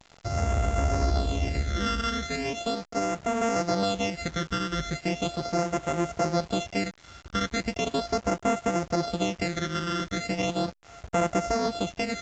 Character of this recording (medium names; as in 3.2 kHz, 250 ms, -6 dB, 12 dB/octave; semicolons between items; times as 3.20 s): a buzz of ramps at a fixed pitch in blocks of 64 samples; phasing stages 12, 0.38 Hz, lowest notch 740–4300 Hz; a quantiser's noise floor 8-bit, dither none; A-law